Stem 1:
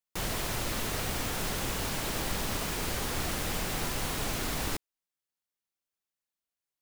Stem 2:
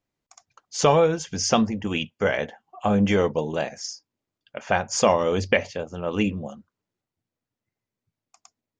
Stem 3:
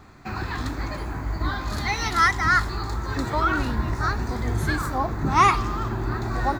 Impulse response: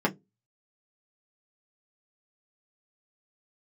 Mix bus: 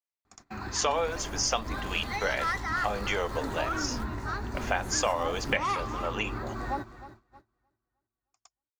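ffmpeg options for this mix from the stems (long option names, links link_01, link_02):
-filter_complex "[0:a]lowpass=1600,acrusher=samples=18:mix=1:aa=0.000001:lfo=1:lforange=28.8:lforate=1.4,adelay=800,volume=-6dB[link_01];[1:a]highpass=710,volume=0.5dB,asplit=2[link_02][link_03];[2:a]asoftclip=type=tanh:threshold=-13dB,adelay=250,volume=-8.5dB,asplit=3[link_04][link_05][link_06];[link_05]volume=-23.5dB[link_07];[link_06]volume=-13.5dB[link_08];[link_03]apad=whole_len=335634[link_09];[link_01][link_09]sidechaingate=range=-33dB:threshold=-46dB:ratio=16:detection=peak[link_10];[3:a]atrim=start_sample=2205[link_11];[link_07][link_11]afir=irnorm=-1:irlink=0[link_12];[link_08]aecho=0:1:310|620|930|1240|1550|1860:1|0.46|0.212|0.0973|0.0448|0.0206[link_13];[link_10][link_02][link_04][link_12][link_13]amix=inputs=5:normalize=0,agate=range=-17dB:threshold=-51dB:ratio=16:detection=peak,acompressor=threshold=-27dB:ratio=2"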